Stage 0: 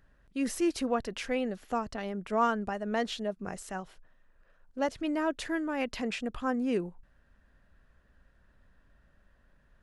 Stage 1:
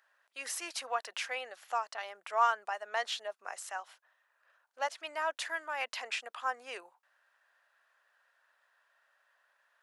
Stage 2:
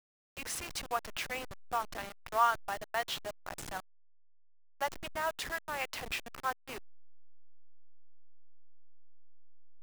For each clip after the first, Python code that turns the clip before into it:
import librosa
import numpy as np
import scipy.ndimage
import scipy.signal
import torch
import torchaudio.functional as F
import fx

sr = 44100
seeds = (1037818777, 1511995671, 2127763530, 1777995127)

y1 = scipy.signal.sosfilt(scipy.signal.butter(4, 730.0, 'highpass', fs=sr, output='sos'), x)
y1 = y1 * librosa.db_to_amplitude(1.5)
y2 = fx.delta_hold(y1, sr, step_db=-36.5)